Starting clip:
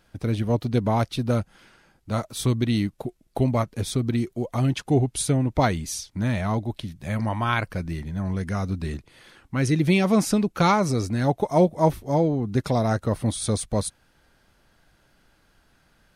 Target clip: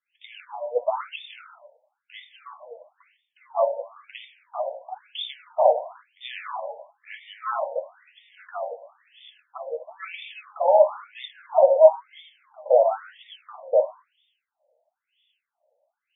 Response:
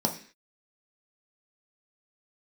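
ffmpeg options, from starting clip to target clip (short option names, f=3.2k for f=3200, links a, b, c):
-filter_complex "[0:a]highshelf=f=4.4k:g=6.5,acrossover=split=180|600|2700[a][b][c][d];[c]aeval=exprs='sgn(val(0))*max(abs(val(0))-0.00178,0)':c=same[e];[a][b][e][d]amix=inputs=4:normalize=0[f];[1:a]atrim=start_sample=2205,afade=t=out:st=0.28:d=0.01,atrim=end_sample=12789,asetrate=28224,aresample=44100[g];[f][g]afir=irnorm=-1:irlink=0,afftfilt=real='re*between(b*sr/1024,660*pow(2600/660,0.5+0.5*sin(2*PI*1*pts/sr))/1.41,660*pow(2600/660,0.5+0.5*sin(2*PI*1*pts/sr))*1.41)':imag='im*between(b*sr/1024,660*pow(2600/660,0.5+0.5*sin(2*PI*1*pts/sr))/1.41,660*pow(2600/660,0.5+0.5*sin(2*PI*1*pts/sr))*1.41)':win_size=1024:overlap=0.75,volume=-6.5dB"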